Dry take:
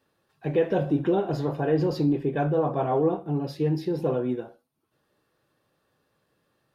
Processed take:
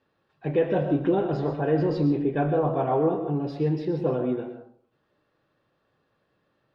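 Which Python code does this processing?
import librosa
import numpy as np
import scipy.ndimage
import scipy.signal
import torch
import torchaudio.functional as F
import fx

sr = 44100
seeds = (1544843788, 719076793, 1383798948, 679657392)

y = scipy.signal.sosfilt(scipy.signal.butter(2, 3700.0, 'lowpass', fs=sr, output='sos'), x)
y = fx.rev_freeverb(y, sr, rt60_s=0.53, hf_ratio=0.45, predelay_ms=80, drr_db=7.0)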